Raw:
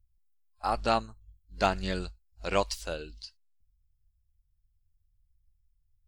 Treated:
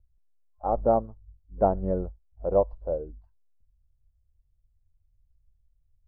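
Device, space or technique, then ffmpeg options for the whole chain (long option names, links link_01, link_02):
under water: -filter_complex "[0:a]asettb=1/sr,asplit=3[link_01][link_02][link_03];[link_01]atrim=end=2.474[link_04];[link_02]atrim=start=2.47:end=3.09,asetpts=PTS-STARTPTS,afade=type=in:duration=0.004:curve=qsin,afade=type=out:start_time=0.616:duration=0.004:curve=qsin,equalizer=frequency=250:width_type=o:width=1:gain=-4,equalizer=frequency=2000:width_type=o:width=1:gain=-11,equalizer=frequency=4000:width_type=o:width=1:gain=5[link_05];[link_03]atrim=start=3.086[link_06];[link_04][link_05]acrossfade=duration=0.004:curve1=hsin:curve2=qsin[link_07];[link_07][link_06]acrossfade=duration=0.004:curve1=qsin:curve2=hsin,lowpass=frequency=810:width=0.5412,lowpass=frequency=810:width=1.3066,equalizer=frequency=530:width_type=o:width=0.45:gain=7,volume=4dB"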